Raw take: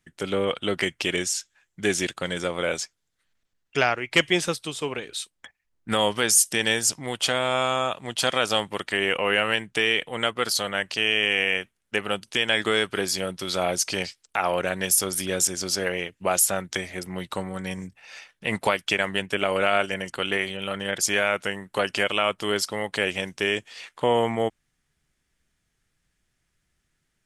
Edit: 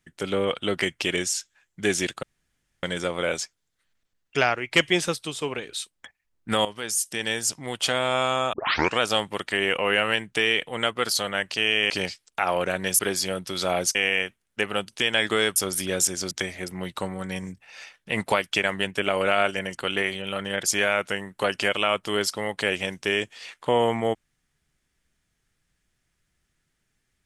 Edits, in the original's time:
2.23 insert room tone 0.60 s
6.05–7.39 fade in, from -12.5 dB
7.93 tape start 0.47 s
11.3–12.91 swap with 13.87–14.96
15.71–16.66 cut

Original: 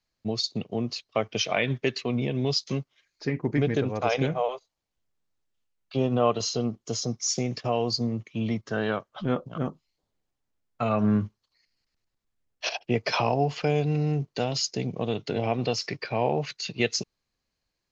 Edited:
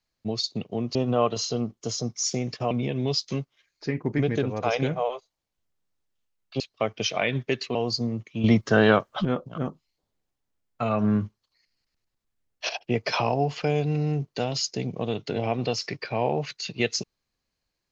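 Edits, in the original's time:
0.95–2.1 swap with 5.99–7.75
8.44–9.25 gain +9.5 dB

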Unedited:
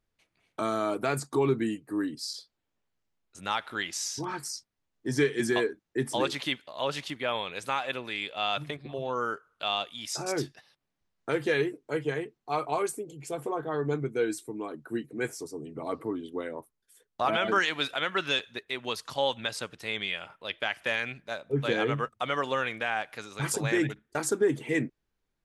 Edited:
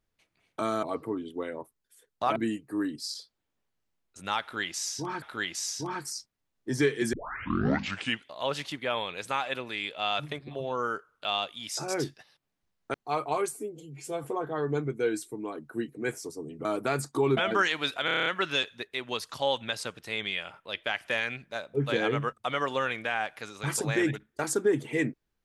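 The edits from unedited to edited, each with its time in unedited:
0.83–1.55 swap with 15.81–17.34
3.6–4.41 loop, 2 plays
5.51 tape start 1.15 s
11.32–12.35 cut
12.9–13.4 stretch 1.5×
18.02 stutter 0.03 s, 8 plays

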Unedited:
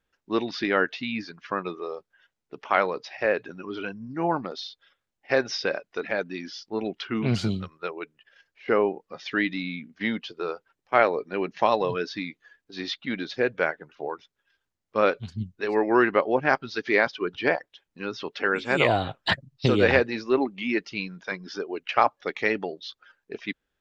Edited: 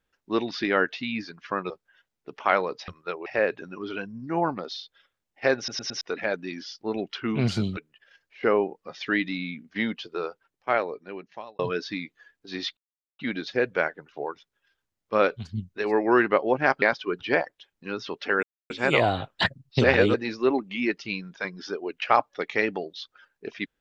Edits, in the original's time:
1.7–1.95 cut
5.44 stutter in place 0.11 s, 4 plays
7.64–8.02 move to 3.13
10.42–11.84 fade out
13.02 insert silence 0.42 s
16.65–16.96 cut
18.57 insert silence 0.27 s
19.71–20.01 reverse

